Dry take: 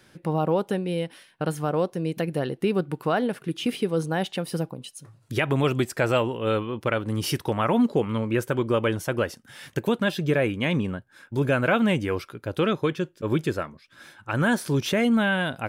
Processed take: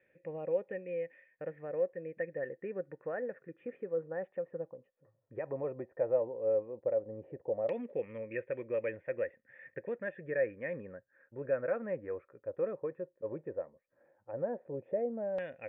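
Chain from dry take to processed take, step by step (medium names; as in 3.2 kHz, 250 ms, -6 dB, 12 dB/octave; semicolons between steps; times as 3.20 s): cascade formant filter e; LFO low-pass saw down 0.13 Hz 670–2800 Hz; trim -4 dB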